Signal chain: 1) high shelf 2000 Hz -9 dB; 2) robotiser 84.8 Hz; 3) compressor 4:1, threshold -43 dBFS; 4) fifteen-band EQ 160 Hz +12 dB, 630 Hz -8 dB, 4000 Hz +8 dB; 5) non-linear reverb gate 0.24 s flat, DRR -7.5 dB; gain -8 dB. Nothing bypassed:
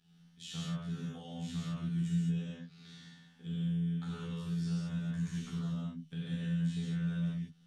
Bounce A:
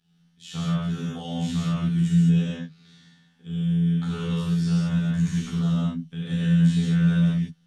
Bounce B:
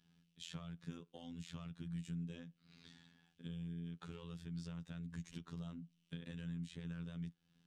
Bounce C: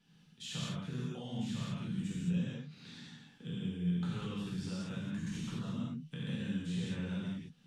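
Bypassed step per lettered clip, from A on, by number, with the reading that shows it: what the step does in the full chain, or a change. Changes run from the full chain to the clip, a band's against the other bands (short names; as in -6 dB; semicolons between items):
3, mean gain reduction 11.5 dB; 5, momentary loudness spread change -6 LU; 2, 125 Hz band -6.0 dB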